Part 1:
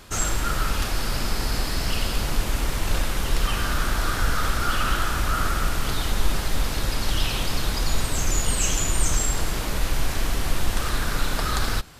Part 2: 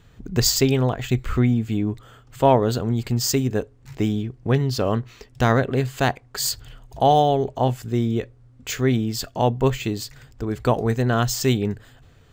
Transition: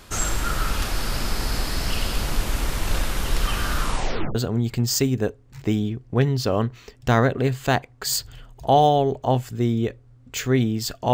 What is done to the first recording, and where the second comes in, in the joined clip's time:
part 1
3.79 s: tape stop 0.56 s
4.35 s: go over to part 2 from 2.68 s

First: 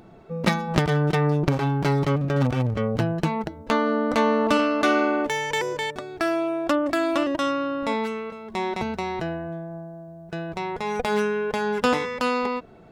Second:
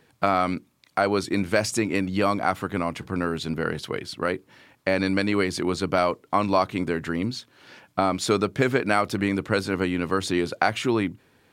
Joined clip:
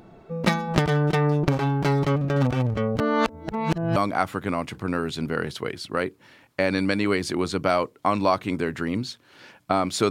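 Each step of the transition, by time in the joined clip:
first
3.00–3.96 s: reverse
3.96 s: go over to second from 2.24 s

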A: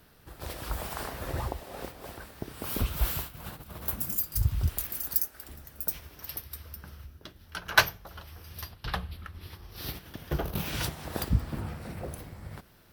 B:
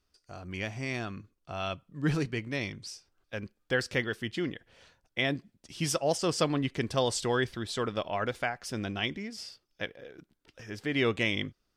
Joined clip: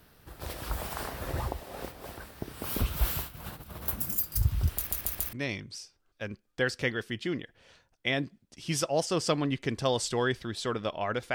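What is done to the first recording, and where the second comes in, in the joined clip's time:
A
4.77 s: stutter in place 0.14 s, 4 plays
5.33 s: go over to B from 2.45 s

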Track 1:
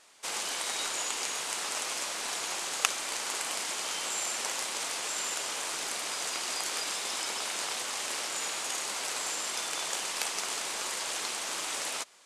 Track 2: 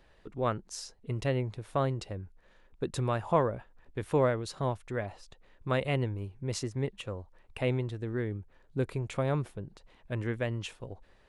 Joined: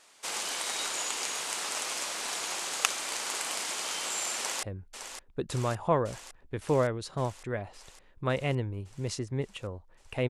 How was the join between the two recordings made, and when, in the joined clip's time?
track 1
4.37–4.63 s: echo throw 560 ms, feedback 75%, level -9 dB
4.63 s: go over to track 2 from 2.07 s

